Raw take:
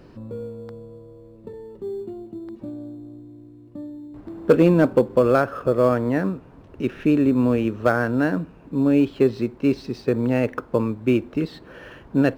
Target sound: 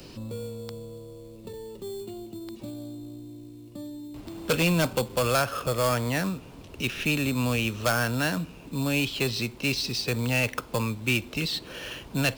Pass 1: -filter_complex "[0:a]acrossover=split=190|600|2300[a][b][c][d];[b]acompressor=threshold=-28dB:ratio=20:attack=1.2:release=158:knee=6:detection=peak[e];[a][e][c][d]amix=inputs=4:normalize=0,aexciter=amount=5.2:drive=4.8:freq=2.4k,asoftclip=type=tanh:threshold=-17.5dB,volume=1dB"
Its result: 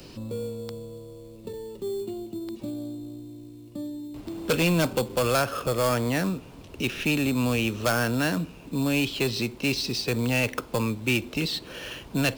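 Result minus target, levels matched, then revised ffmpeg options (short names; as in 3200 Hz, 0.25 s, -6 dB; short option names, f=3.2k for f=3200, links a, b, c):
compressor: peak gain reduction -11 dB
-filter_complex "[0:a]acrossover=split=190|600|2300[a][b][c][d];[b]acompressor=threshold=-39.5dB:ratio=20:attack=1.2:release=158:knee=6:detection=peak[e];[a][e][c][d]amix=inputs=4:normalize=0,aexciter=amount=5.2:drive=4.8:freq=2.4k,asoftclip=type=tanh:threshold=-17.5dB,volume=1dB"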